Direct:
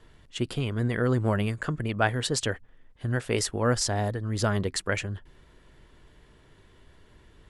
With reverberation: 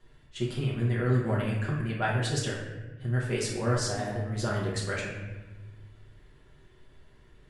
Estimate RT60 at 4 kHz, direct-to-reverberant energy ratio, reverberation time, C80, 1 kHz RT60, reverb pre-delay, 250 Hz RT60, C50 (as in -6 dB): 0.80 s, -5.5 dB, 1.1 s, 5.0 dB, 1.1 s, 5 ms, 1.6 s, 2.0 dB